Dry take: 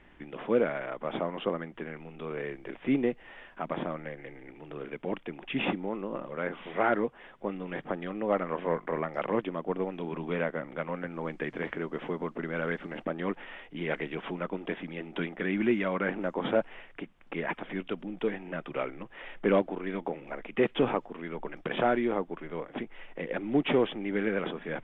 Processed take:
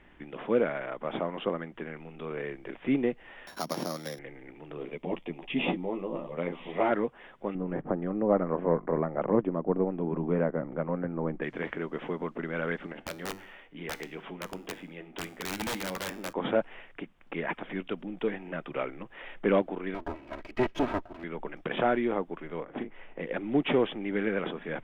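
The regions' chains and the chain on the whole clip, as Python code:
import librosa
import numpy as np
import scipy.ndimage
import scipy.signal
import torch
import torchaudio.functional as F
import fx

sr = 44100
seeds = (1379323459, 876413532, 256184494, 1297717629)

y = fx.chain(x, sr, fx.sample_sort(block=8),
    fx.highpass(hz=76.0, slope=12),
    fx.band_squash(depth_pct=40), at=(3.47, 4.19))
y = fx.chain(y, sr, fx.peak_eq(hz=1500.0, db=-13.0, octaves=0.49),
    fx.doubler(ms=12.0, db=-3.5), at=(4.76, 6.91))
y = fx.chain(y, sr, fx.lowpass(hz=1200.0, slope=12),
    fx.low_shelf(hz=500.0, db=7.0), at=(7.55, 11.42))
y = fx.chain(y, sr, fx.overflow_wrap(gain_db=22.0),
    fx.hum_notches(base_hz=50, count=7),
    fx.comb_fb(f0_hz=96.0, decay_s=0.59, harmonics='all', damping=0.0, mix_pct=50), at=(12.92, 16.33))
y = fx.chain(y, sr, fx.lower_of_two(delay_ms=3.1),
    fx.high_shelf(hz=3100.0, db=-8.0), at=(19.94, 21.24))
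y = fx.chain(y, sr, fx.lowpass(hz=1900.0, slope=6),
    fx.doubler(ms=37.0, db=-7.0), at=(22.64, 23.22))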